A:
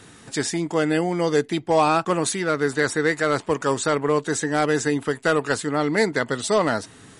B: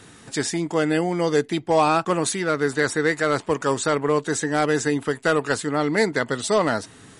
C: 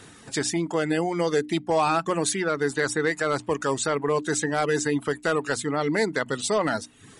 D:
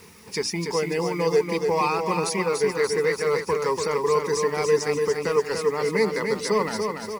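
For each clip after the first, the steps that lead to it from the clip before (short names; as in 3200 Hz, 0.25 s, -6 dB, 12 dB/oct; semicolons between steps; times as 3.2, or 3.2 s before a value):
nothing audible
reverb removal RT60 0.58 s; notches 60/120/180/240/300 Hz; limiter -13.5 dBFS, peak gain reduction 5 dB
ripple EQ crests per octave 0.84, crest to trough 14 dB; bit-crush 8-bit; feedback echo 0.289 s, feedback 49%, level -5 dB; gain -3 dB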